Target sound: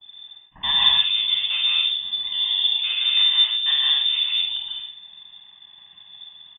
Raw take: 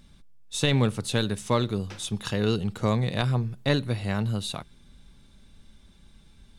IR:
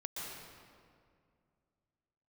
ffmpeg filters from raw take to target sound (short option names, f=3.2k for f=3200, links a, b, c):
-filter_complex "[0:a]aeval=exprs='val(0)+0.5*0.0299*sgn(val(0))':c=same,highpass=f=140:w=0.5412,highpass=f=140:w=1.3066,afwtdn=0.0316,aecho=1:1:1.1:0.74,aecho=1:1:49|73:0.531|0.224,acrossover=split=360|2800[a][b][c];[b]asoftclip=type=hard:threshold=-29.5dB[d];[c]acompressor=mode=upward:threshold=-51dB:ratio=2.5[e];[a][d][e]amix=inputs=3:normalize=0,lowpass=f=3.1k:t=q:w=0.5098,lowpass=f=3.1k:t=q:w=0.6013,lowpass=f=3.1k:t=q:w=0.9,lowpass=f=3.1k:t=q:w=2.563,afreqshift=-3700[f];[1:a]atrim=start_sample=2205,afade=t=out:st=0.34:d=0.01,atrim=end_sample=15435[g];[f][g]afir=irnorm=-1:irlink=0,adynamicequalizer=threshold=0.0141:dfrequency=2500:dqfactor=0.84:tfrequency=2500:tqfactor=0.84:attack=5:release=100:ratio=0.375:range=3:mode=boostabove:tftype=bell"